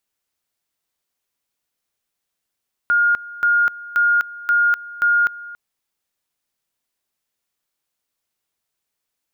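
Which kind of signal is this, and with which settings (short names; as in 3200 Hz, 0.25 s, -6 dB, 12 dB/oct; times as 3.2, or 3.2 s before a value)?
two-level tone 1420 Hz -12.5 dBFS, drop 19 dB, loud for 0.25 s, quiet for 0.28 s, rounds 5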